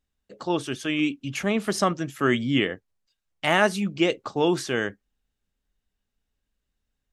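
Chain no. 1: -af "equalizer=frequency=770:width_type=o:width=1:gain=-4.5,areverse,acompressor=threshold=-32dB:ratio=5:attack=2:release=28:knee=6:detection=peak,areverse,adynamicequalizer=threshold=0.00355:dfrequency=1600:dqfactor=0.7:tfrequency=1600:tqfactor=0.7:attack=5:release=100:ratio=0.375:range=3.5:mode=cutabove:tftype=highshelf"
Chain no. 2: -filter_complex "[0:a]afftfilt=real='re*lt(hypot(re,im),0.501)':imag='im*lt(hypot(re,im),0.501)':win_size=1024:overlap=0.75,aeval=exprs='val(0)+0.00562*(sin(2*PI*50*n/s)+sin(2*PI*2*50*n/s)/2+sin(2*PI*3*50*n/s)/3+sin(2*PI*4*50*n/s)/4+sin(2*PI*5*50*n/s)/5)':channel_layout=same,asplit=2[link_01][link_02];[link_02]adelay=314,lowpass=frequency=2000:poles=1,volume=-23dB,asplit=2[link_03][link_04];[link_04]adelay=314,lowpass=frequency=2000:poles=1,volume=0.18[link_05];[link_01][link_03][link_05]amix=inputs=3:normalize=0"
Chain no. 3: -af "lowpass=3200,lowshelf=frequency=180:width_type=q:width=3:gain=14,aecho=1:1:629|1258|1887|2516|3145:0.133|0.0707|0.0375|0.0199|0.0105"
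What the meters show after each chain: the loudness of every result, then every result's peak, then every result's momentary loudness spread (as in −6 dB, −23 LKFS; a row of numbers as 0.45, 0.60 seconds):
−36.0, −28.0, −21.5 LKFS; −21.0, −7.0, −4.5 dBFS; 7, 8, 20 LU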